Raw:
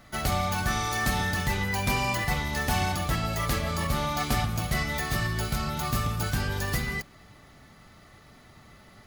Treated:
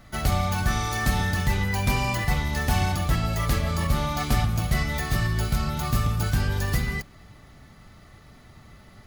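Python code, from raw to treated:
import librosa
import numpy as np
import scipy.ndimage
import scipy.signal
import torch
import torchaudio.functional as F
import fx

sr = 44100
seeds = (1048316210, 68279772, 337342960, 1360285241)

y = fx.low_shelf(x, sr, hz=150.0, db=8.0)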